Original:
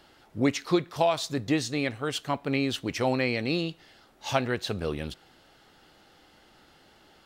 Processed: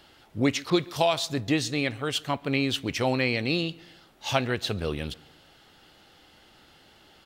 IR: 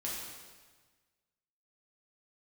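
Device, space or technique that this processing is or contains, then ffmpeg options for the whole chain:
presence and air boost: -filter_complex "[0:a]equalizer=f=89:t=o:w=1.4:g=3.5,equalizer=f=3.1k:t=o:w=1:g=4.5,highshelf=f=9.1k:g=4,asplit=2[a][b];[b]adelay=138,lowpass=f=2.5k:p=1,volume=-23dB,asplit=2[c][d];[d]adelay=138,lowpass=f=2.5k:p=1,volume=0.48,asplit=2[e][f];[f]adelay=138,lowpass=f=2.5k:p=1,volume=0.48[g];[a][c][e][g]amix=inputs=4:normalize=0,asettb=1/sr,asplit=3[h][i][j];[h]atrim=end=0.704[k];[i]atrim=start=0.7:end=1.14,asetpts=PTS-STARTPTS,afade=t=in:d=0.004:c=qsin,afade=t=out:st=0.436:d=0.004:c=qsin,adynamicequalizer=threshold=0.00794:dfrequency=3500:dqfactor=0.7:tfrequency=3500:tqfactor=0.7:attack=5:release=100:ratio=0.375:range=3:mode=boostabove:tftype=highshelf[l];[j]atrim=start=1.136[m];[k][l]acrossfade=d=0.004:c1=hsin:c2=qsin[n];[n][m]acrossfade=d=0.004:c1=qsin:c2=hsin"

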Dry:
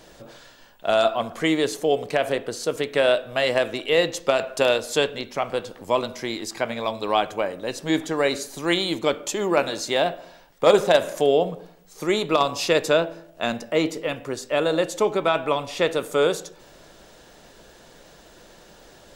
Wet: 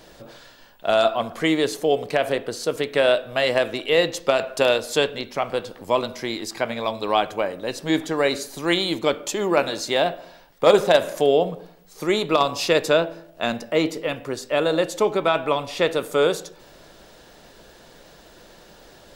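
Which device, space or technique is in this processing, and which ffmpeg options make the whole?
exciter from parts: -filter_complex "[0:a]asplit=2[a][b];[b]highpass=f=4.8k:w=0.5412,highpass=f=4.8k:w=1.3066,asoftclip=type=tanh:threshold=-30.5dB,highpass=f=3.4k:w=0.5412,highpass=f=3.4k:w=1.3066,volume=-11.5dB[c];[a][c]amix=inputs=2:normalize=0,volume=1dB"

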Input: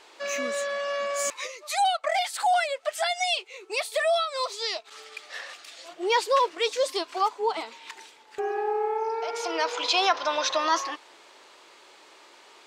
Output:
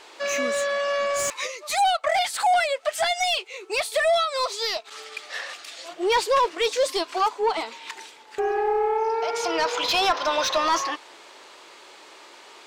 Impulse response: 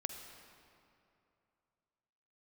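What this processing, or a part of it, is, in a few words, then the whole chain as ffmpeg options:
saturation between pre-emphasis and de-emphasis: -af "highshelf=f=4.5k:g=12,asoftclip=type=tanh:threshold=-19.5dB,highshelf=f=4.5k:g=-12,volume=5.5dB"

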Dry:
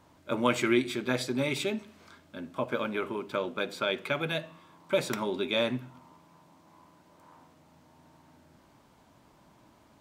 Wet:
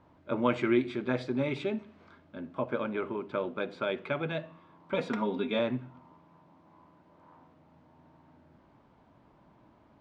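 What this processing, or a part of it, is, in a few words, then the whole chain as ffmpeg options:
phone in a pocket: -filter_complex "[0:a]asettb=1/sr,asplit=3[a][b][c];[a]atrim=end=4.934[d];[b]atrim=start=4.93:end=5.59,asetpts=PTS-STARTPTS,afade=t=in:d=0.004:c=qsin,afade=t=out:st=0.656:d=0.004:c=qsin,aecho=1:1:4.2:0.73,atrim=end_sample=29106[e];[c]atrim=start=5.586[f];[d][e]acrossfade=d=0.004:c1=hsin:c2=qsin[g];[g][f]acrossfade=d=0.004:c1=qsin:c2=hsin,lowpass=3.8k,highshelf=f=2.1k:g=-9.5"

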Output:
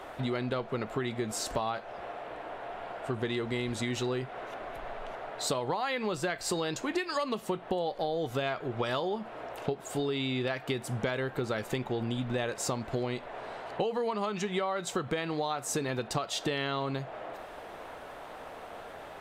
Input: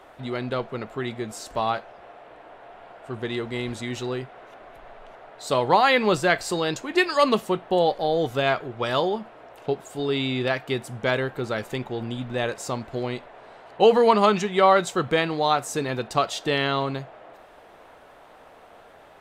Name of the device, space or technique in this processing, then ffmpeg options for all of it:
serial compression, leveller first: -af "acompressor=threshold=-22dB:ratio=3,acompressor=threshold=-34dB:ratio=6,volume=5dB"

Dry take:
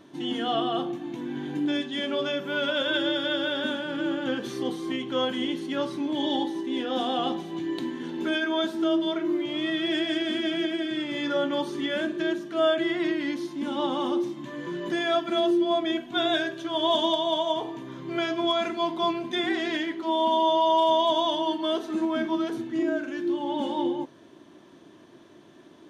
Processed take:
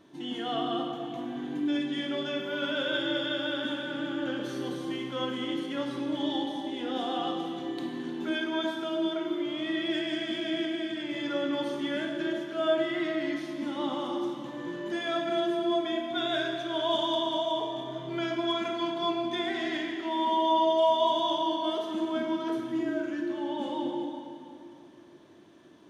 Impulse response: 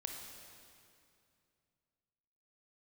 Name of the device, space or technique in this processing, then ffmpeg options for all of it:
stairwell: -filter_complex "[1:a]atrim=start_sample=2205[a];[0:a][a]afir=irnorm=-1:irlink=0,volume=-2.5dB"

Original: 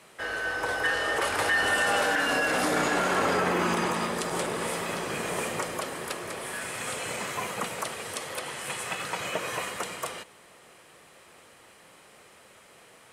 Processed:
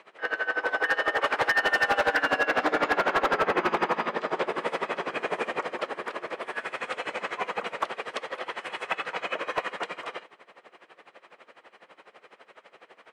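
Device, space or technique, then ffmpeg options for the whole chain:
helicopter radio: -filter_complex "[0:a]asettb=1/sr,asplit=3[a][b][c];[a]atrim=end=2.414[d];[b]atrim=start=2.41:end=4.47,asetpts=PTS-STARTPTS,afade=t=in:d=0.004:c=qsin,afade=t=out:st=2.056:d=0.004:c=qsin,lowpass=6.4k[e];[c]atrim=start=4.466[f];[d][e]acrossfade=d=0.004:c1=hsin:c2=qsin[g];[g][f]acrossfade=d=0.004:c1=qsin:c2=hsin,highpass=340,lowpass=2.6k,aeval=exprs='val(0)*pow(10,-19*(0.5-0.5*cos(2*PI*12*n/s))/20)':c=same,asoftclip=type=hard:threshold=-25dB,volume=8dB"

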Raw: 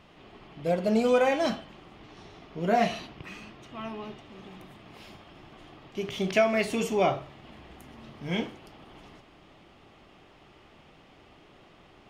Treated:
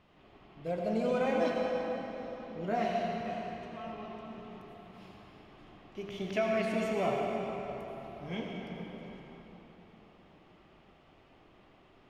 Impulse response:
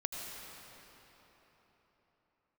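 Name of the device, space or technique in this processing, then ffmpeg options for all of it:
swimming-pool hall: -filter_complex "[1:a]atrim=start_sample=2205[a];[0:a][a]afir=irnorm=-1:irlink=0,highshelf=f=4.1k:g=-7,volume=-7dB"

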